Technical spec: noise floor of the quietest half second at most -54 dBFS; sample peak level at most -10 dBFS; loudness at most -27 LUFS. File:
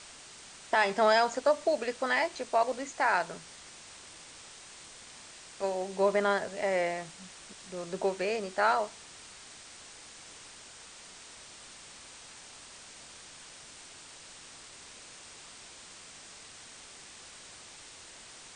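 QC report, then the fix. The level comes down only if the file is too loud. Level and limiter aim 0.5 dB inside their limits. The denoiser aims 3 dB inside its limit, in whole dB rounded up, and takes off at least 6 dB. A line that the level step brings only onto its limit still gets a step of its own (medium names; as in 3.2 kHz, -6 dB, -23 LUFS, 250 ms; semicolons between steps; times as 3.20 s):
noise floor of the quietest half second -50 dBFS: fail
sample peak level -13.0 dBFS: pass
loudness -29.5 LUFS: pass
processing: noise reduction 7 dB, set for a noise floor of -50 dBFS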